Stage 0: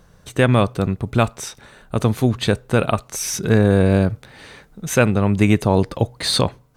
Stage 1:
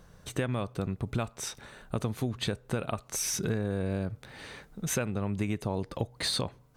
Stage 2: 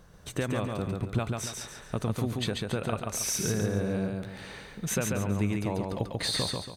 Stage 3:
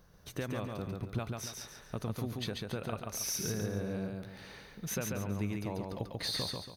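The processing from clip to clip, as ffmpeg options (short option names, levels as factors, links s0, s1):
-af "acompressor=threshold=0.0631:ratio=6,volume=0.631"
-af "aecho=1:1:140|280|420|560|700:0.708|0.255|0.0917|0.033|0.0119"
-af "aexciter=amount=1.4:drive=1.6:freq=4500,volume=0.447"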